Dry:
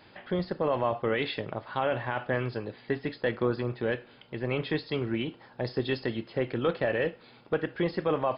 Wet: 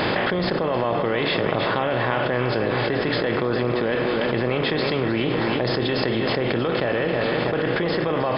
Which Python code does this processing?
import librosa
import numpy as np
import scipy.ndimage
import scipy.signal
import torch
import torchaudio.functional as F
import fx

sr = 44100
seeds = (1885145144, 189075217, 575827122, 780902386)

p1 = fx.bin_compress(x, sr, power=0.6)
p2 = p1 + fx.echo_feedback(p1, sr, ms=318, feedback_pct=57, wet_db=-10.5, dry=0)
p3 = fx.env_flatten(p2, sr, amount_pct=100)
y = F.gain(torch.from_numpy(p3), -2.0).numpy()